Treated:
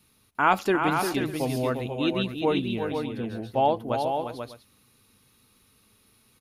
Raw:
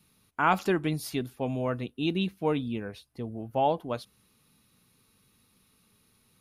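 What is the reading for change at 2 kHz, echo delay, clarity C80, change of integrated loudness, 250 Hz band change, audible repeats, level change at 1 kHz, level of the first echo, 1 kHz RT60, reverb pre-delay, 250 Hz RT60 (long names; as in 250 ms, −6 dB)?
+4.5 dB, 350 ms, no reverb audible, +3.5 dB, +3.0 dB, 3, +4.5 dB, −7.0 dB, no reverb audible, no reverb audible, no reverb audible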